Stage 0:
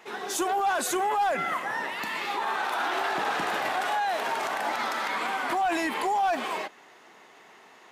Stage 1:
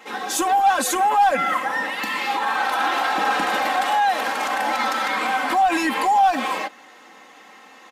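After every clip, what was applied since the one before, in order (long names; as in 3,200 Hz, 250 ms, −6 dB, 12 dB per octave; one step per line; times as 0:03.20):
comb filter 3.8 ms, depth 95%
level +4 dB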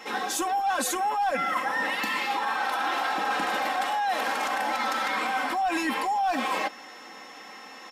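reversed playback
downward compressor, threshold −26 dBFS, peak gain reduction 12.5 dB
reversed playback
steady tone 5,400 Hz −53 dBFS
level +1.5 dB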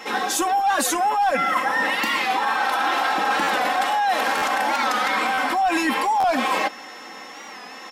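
buffer that repeats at 0:03.43/0:04.37/0:05.33/0:06.20, samples 512, times 3
wow of a warped record 45 rpm, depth 100 cents
level +6 dB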